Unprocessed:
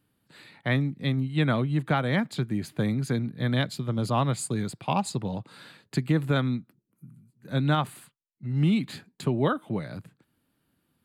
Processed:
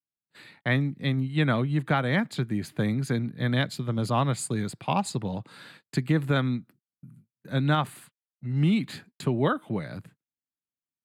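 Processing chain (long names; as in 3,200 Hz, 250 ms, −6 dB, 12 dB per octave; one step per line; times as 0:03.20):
noise gate −52 dBFS, range −34 dB
parametric band 1,800 Hz +2.5 dB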